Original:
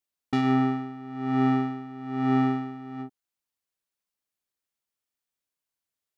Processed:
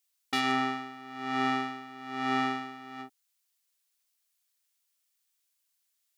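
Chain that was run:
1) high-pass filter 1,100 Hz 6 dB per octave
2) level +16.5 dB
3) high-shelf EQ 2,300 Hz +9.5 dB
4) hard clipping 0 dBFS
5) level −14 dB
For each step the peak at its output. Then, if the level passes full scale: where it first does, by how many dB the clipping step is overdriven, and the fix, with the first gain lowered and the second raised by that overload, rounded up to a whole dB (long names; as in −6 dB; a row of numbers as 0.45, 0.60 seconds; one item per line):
−17.0, −0.5, +3.5, 0.0, −14.0 dBFS
step 3, 3.5 dB
step 2 +12.5 dB, step 5 −10 dB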